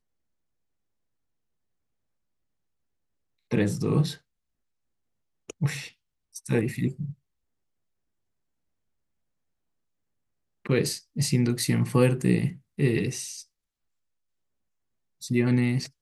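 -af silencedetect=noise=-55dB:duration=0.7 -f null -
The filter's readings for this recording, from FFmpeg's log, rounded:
silence_start: 0.00
silence_end: 3.51 | silence_duration: 3.51
silence_start: 4.20
silence_end: 5.49 | silence_duration: 1.29
silence_start: 7.14
silence_end: 10.65 | silence_duration: 3.51
silence_start: 13.45
silence_end: 15.21 | silence_duration: 1.76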